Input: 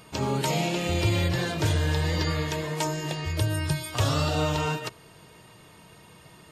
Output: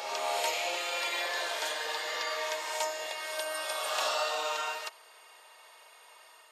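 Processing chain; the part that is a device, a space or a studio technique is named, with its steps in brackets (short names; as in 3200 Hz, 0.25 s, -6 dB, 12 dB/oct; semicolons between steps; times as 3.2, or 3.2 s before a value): ghost voice (reverse; reverb RT60 2.5 s, pre-delay 27 ms, DRR -1.5 dB; reverse; HPF 620 Hz 24 dB/oct); gain -4 dB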